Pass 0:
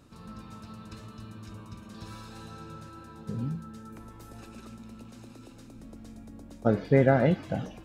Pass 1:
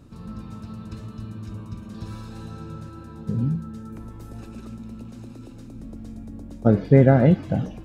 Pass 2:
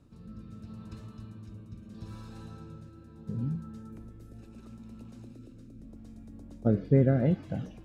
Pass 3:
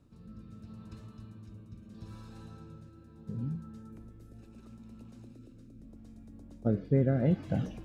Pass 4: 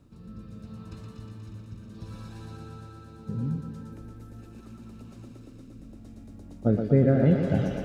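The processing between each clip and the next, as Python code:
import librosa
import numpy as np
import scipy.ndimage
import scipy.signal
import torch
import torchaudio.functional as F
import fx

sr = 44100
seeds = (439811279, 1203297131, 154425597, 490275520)

y1 = fx.low_shelf(x, sr, hz=430.0, db=10.5)
y2 = fx.rotary(y1, sr, hz=0.75)
y2 = F.gain(torch.from_numpy(y2), -7.5).numpy()
y3 = fx.rider(y2, sr, range_db=5, speed_s=0.5)
y4 = fx.echo_thinned(y3, sr, ms=120, feedback_pct=81, hz=180.0, wet_db=-5.5)
y4 = F.gain(torch.from_numpy(y4), 5.5).numpy()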